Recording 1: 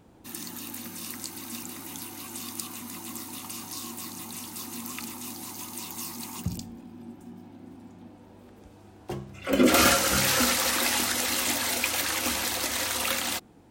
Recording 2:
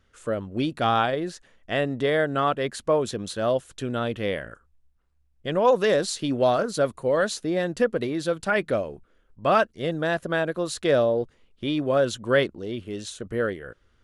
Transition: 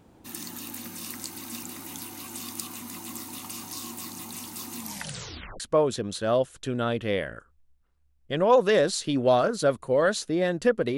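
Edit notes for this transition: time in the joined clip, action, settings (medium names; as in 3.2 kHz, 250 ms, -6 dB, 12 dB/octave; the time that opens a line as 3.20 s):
recording 1
4.80 s: tape stop 0.80 s
5.60 s: go over to recording 2 from 2.75 s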